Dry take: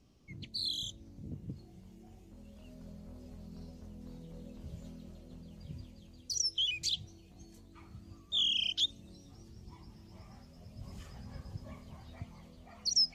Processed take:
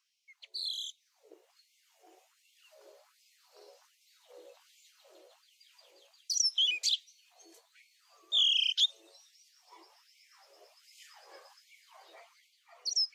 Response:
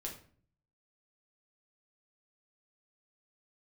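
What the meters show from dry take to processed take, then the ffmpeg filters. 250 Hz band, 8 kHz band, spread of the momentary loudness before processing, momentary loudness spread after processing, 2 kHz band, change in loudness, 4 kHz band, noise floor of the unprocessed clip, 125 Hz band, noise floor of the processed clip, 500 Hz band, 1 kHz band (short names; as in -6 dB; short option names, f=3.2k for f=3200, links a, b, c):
under -20 dB, +2.5 dB, 22 LU, 14 LU, +4.0 dB, +4.5 dB, +3.0 dB, -57 dBFS, under -40 dB, -73 dBFS, -1.0 dB, n/a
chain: -af "dynaudnorm=f=250:g=9:m=6dB,afftfilt=real='re*gte(b*sr/1024,330*pow(2100/330,0.5+0.5*sin(2*PI*1.3*pts/sr)))':imag='im*gte(b*sr/1024,330*pow(2100/330,0.5+0.5*sin(2*PI*1.3*pts/sr)))':win_size=1024:overlap=0.75,volume=-2dB"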